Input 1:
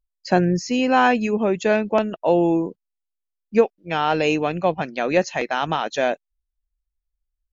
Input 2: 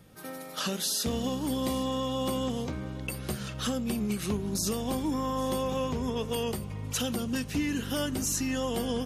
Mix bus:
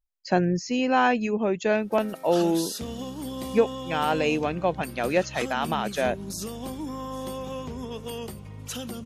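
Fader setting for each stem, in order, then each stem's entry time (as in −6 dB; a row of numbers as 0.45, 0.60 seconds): −4.5, −4.0 decibels; 0.00, 1.75 seconds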